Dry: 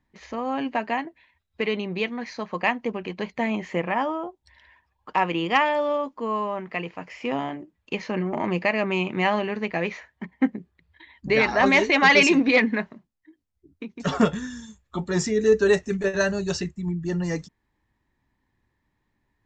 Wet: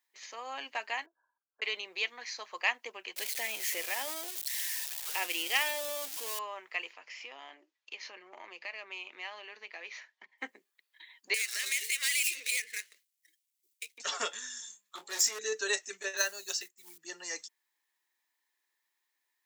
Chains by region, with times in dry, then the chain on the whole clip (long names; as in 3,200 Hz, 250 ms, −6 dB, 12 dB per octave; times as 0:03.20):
0:01.06–0:01.62: linear-phase brick-wall low-pass 1,700 Hz + downward compressor 5 to 1, threshold −44 dBFS
0:03.16–0:06.39: converter with a step at zero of −30.5 dBFS + parametric band 1,100 Hz −10 dB 0.81 octaves
0:06.93–0:10.38: low-pass filter 6,000 Hz 24 dB per octave + downward compressor 2 to 1, threshold −38 dBFS
0:11.34–0:13.98: running median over 9 samples + drawn EQ curve 140 Hz 0 dB, 250 Hz −22 dB, 480 Hz −4 dB, 760 Hz −27 dB, 2,100 Hz +6 dB, 7,400 Hz +11 dB + downward compressor 3 to 1, threshold −31 dBFS
0:14.52–0:15.39: hum removal 207.3 Hz, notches 5 + hard clipping −24 dBFS + double-tracking delay 24 ms −8 dB
0:16.17–0:16.98: floating-point word with a short mantissa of 4 bits + expander for the loud parts, over −40 dBFS
whole clip: high-pass filter 330 Hz 24 dB per octave; first difference; level +6.5 dB